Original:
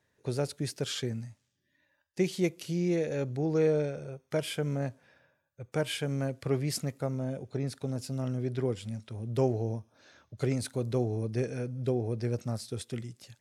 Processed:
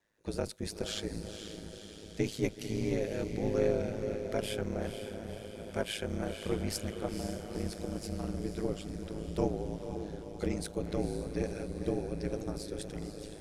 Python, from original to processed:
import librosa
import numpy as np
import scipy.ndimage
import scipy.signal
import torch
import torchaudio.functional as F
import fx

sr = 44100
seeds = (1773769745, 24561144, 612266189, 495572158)

y = fx.octave_divider(x, sr, octaves=2, level_db=1.0)
y = fx.highpass(y, sr, hz=170.0, slope=6)
y = fx.echo_diffused(y, sr, ms=492, feedback_pct=62, wet_db=-7.5)
y = y * np.sin(2.0 * np.pi * 53.0 * np.arange(len(y)) / sr)